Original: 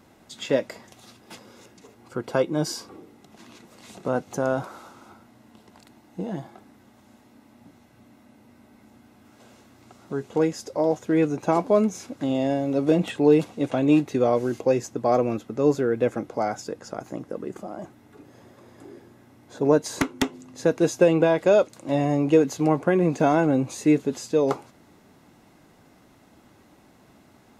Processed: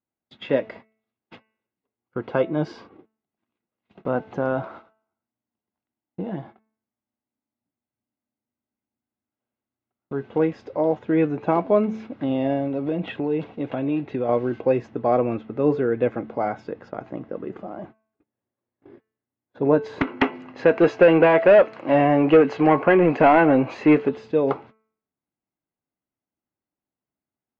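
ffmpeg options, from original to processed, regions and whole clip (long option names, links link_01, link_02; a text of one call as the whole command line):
ffmpeg -i in.wav -filter_complex "[0:a]asettb=1/sr,asplit=3[link_01][link_02][link_03];[link_01]atrim=end=12.674[link_04];[link_02]atrim=start=12.67:end=14.29,asetpts=PTS-STARTPTS,afade=type=in:duration=0.004:curve=qsin,afade=type=out:start_time=1.616:duration=0.004:curve=qsin,bandreject=frequency=1200:width=21,acompressor=threshold=-24dB:ratio=2.5:attack=3.2:release=140:knee=1:detection=peak[link_05];[link_03]atrim=start=14.286[link_06];[link_04][link_05]acrossfade=duration=0.004:curve1=hsin:curve2=qsin[link_07];[link_07][link_06]acrossfade=duration=0.004:curve1=qsin:curve2=hsin,asettb=1/sr,asplit=3[link_08][link_09][link_10];[link_08]atrim=end=20.074[link_11];[link_09]atrim=start=20.07:end=24.09,asetpts=PTS-STARTPTS,afade=type=in:duration=0.004:curve=qsin,afade=type=out:start_time=4.016:duration=0.004:curve=qsin,asplit=2[link_12][link_13];[link_13]highpass=frequency=720:poles=1,volume=17dB,asoftclip=type=tanh:threshold=-5.5dB[link_14];[link_12][link_14]amix=inputs=2:normalize=0,lowpass=frequency=4000:poles=1,volume=-6dB,bandreject=frequency=3600:width=6.4[link_15];[link_10]atrim=start=24.086[link_16];[link_11][link_15]acrossfade=duration=0.004:curve1=hsin:curve2=qsin[link_17];[link_17][link_16]acrossfade=duration=0.004:curve1=qsin:curve2=hsin,agate=range=-38dB:threshold=-42dB:ratio=16:detection=peak,lowpass=frequency=3100:width=0.5412,lowpass=frequency=3100:width=1.3066,bandreject=frequency=219.5:width_type=h:width=4,bandreject=frequency=439:width_type=h:width=4,bandreject=frequency=658.5:width_type=h:width=4,bandreject=frequency=878:width_type=h:width=4,bandreject=frequency=1097.5:width_type=h:width=4,bandreject=frequency=1317:width_type=h:width=4,bandreject=frequency=1536.5:width_type=h:width=4,bandreject=frequency=1756:width_type=h:width=4,bandreject=frequency=1975.5:width_type=h:width=4,bandreject=frequency=2195:width_type=h:width=4,bandreject=frequency=2414.5:width_type=h:width=4,bandreject=frequency=2634:width_type=h:width=4,bandreject=frequency=2853.5:width_type=h:width=4,volume=1dB" out.wav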